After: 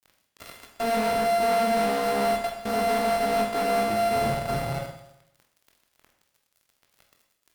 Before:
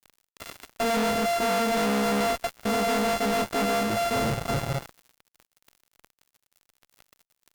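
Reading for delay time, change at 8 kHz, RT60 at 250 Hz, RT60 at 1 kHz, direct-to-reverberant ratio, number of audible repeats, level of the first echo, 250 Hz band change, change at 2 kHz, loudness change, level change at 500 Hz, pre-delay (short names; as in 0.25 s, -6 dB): none, -4.0 dB, 0.85 s, 0.85 s, 2.0 dB, none, none, -3.0 dB, -1.5 dB, +1.0 dB, +2.5 dB, 19 ms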